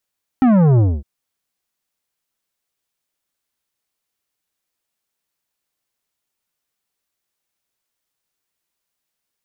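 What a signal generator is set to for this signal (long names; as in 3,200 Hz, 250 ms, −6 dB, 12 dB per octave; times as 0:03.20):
bass drop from 270 Hz, over 0.61 s, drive 11.5 dB, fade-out 0.24 s, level −10.5 dB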